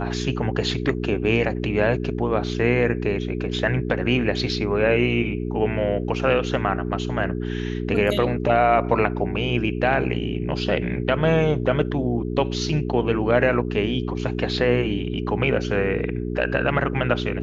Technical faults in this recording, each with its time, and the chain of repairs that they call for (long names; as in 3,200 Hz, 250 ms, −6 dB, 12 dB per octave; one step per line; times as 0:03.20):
mains hum 60 Hz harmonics 7 −27 dBFS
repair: hum removal 60 Hz, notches 7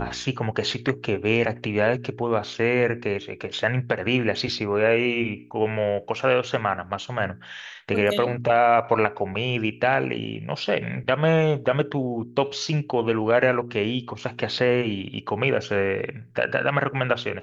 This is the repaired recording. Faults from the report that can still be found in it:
none of them is left